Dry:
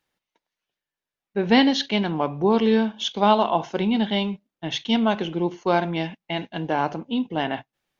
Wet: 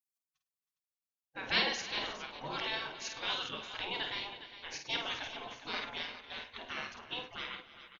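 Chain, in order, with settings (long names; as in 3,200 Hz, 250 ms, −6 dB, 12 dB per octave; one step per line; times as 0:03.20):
gate on every frequency bin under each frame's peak −20 dB weak
on a send: multi-tap delay 50/105/268/316/409 ms −6.5/−19.5/−20/−16.5/−12.5 dB
on the sum: level −2.5 dB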